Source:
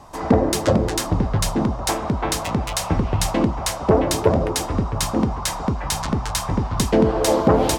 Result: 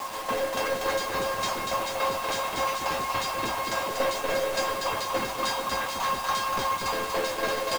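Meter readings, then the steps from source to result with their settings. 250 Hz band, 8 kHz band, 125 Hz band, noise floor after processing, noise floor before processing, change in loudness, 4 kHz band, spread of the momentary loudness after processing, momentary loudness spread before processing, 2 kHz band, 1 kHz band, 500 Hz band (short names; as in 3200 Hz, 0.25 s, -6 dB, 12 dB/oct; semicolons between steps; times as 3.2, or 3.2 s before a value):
-18.5 dB, -9.0 dB, -22.5 dB, -33 dBFS, -29 dBFS, -7.0 dB, -3.0 dB, 2 LU, 6 LU, +1.5 dB, -2.0 dB, -7.5 dB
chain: overdrive pedal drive 39 dB, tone 2700 Hz, clips at -1.5 dBFS; low shelf 340 Hz -6 dB; resonator 540 Hz, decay 0.29 s, harmonics all, mix 90%; tremolo saw down 3.5 Hz, depth 85%; LPF 7700 Hz; high shelf 2200 Hz +4.5 dB; bouncing-ball echo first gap 0.24 s, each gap 0.8×, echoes 5; bit-crush 6-bit; gain -2.5 dB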